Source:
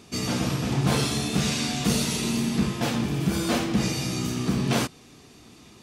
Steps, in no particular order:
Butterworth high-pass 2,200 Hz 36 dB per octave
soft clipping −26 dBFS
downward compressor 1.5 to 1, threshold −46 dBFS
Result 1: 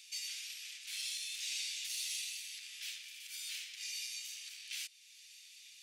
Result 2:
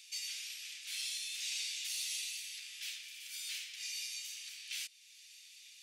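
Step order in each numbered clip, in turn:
downward compressor, then soft clipping, then Butterworth high-pass
downward compressor, then Butterworth high-pass, then soft clipping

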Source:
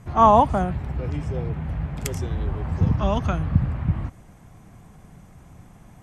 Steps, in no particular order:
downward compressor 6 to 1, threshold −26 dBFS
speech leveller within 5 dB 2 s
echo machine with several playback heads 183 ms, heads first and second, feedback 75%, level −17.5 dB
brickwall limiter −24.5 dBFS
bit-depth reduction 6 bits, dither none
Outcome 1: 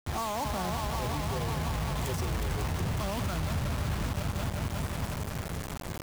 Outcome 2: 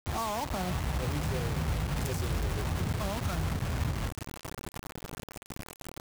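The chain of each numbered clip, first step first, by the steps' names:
echo machine with several playback heads, then speech leveller, then brickwall limiter, then downward compressor, then bit-depth reduction
speech leveller, then downward compressor, then brickwall limiter, then echo machine with several playback heads, then bit-depth reduction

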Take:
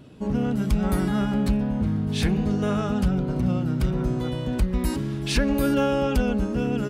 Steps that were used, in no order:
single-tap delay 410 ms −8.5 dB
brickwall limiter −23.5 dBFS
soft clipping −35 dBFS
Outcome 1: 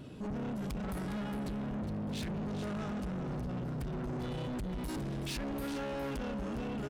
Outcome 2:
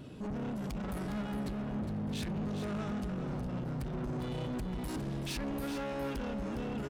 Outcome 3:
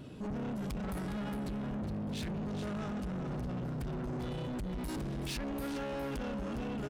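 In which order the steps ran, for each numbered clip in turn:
brickwall limiter, then single-tap delay, then soft clipping
brickwall limiter, then soft clipping, then single-tap delay
single-tap delay, then brickwall limiter, then soft clipping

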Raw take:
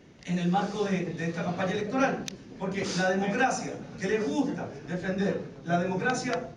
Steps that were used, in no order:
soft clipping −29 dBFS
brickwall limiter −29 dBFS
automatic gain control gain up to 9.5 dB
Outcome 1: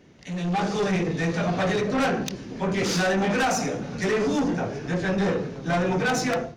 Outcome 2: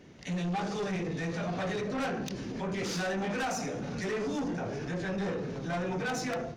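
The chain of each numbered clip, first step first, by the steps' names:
soft clipping, then brickwall limiter, then automatic gain control
soft clipping, then automatic gain control, then brickwall limiter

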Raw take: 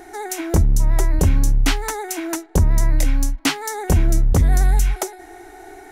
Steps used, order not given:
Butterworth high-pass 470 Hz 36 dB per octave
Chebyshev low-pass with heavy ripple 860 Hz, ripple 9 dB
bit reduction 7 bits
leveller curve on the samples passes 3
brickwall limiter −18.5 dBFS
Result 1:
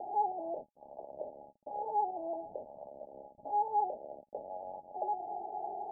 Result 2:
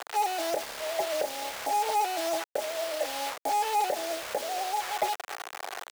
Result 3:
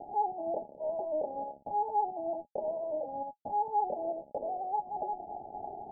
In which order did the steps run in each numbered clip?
brickwall limiter, then leveller curve on the samples, then Butterworth high-pass, then bit reduction, then Chebyshev low-pass with heavy ripple
Chebyshev low-pass with heavy ripple, then bit reduction, then brickwall limiter, then Butterworth high-pass, then leveller curve on the samples
Butterworth high-pass, then leveller curve on the samples, then bit reduction, then brickwall limiter, then Chebyshev low-pass with heavy ripple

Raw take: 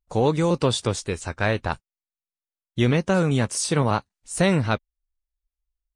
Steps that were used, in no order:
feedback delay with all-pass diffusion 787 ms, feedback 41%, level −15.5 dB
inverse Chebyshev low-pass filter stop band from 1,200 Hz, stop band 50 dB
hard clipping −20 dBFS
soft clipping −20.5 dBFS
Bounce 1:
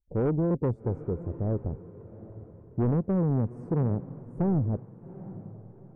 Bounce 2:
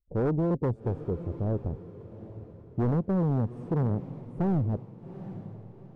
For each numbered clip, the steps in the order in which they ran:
inverse Chebyshev low-pass filter, then soft clipping, then hard clipping, then feedback delay with all-pass diffusion
inverse Chebyshev low-pass filter, then hard clipping, then feedback delay with all-pass diffusion, then soft clipping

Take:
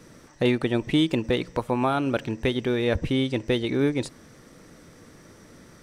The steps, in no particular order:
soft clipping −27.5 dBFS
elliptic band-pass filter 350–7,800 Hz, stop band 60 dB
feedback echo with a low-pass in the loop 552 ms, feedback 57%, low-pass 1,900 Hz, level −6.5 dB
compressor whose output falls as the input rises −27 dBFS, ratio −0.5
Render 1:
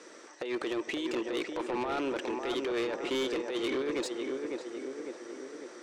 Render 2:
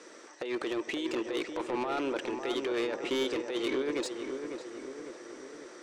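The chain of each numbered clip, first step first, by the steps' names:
elliptic band-pass filter, then compressor whose output falls as the input rises, then feedback echo with a low-pass in the loop, then soft clipping
elliptic band-pass filter, then compressor whose output falls as the input rises, then soft clipping, then feedback echo with a low-pass in the loop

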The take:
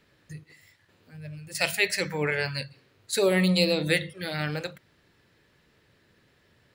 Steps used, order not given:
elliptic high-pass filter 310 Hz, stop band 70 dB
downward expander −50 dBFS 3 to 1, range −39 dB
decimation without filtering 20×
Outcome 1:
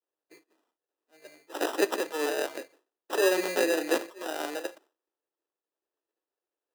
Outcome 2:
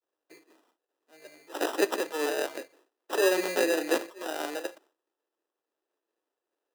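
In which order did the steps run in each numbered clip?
decimation without filtering, then elliptic high-pass filter, then downward expander
downward expander, then decimation without filtering, then elliptic high-pass filter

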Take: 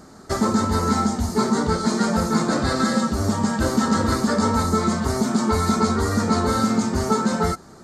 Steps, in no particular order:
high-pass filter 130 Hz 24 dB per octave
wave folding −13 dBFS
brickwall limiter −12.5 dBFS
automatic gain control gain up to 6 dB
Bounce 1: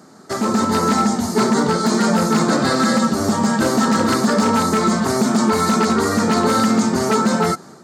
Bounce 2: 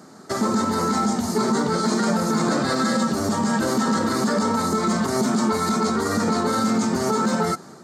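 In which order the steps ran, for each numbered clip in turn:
wave folding, then high-pass filter, then brickwall limiter, then automatic gain control
automatic gain control, then brickwall limiter, then wave folding, then high-pass filter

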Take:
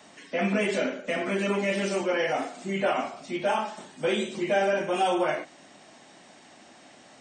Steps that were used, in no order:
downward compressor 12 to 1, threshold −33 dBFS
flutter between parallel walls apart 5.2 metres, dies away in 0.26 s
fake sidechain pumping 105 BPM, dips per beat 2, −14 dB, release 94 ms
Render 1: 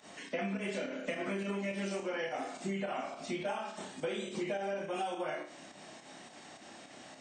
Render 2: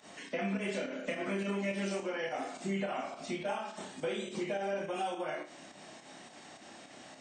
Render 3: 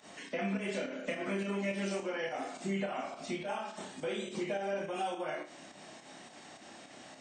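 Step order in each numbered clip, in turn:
fake sidechain pumping, then flutter between parallel walls, then downward compressor
fake sidechain pumping, then downward compressor, then flutter between parallel walls
downward compressor, then fake sidechain pumping, then flutter between parallel walls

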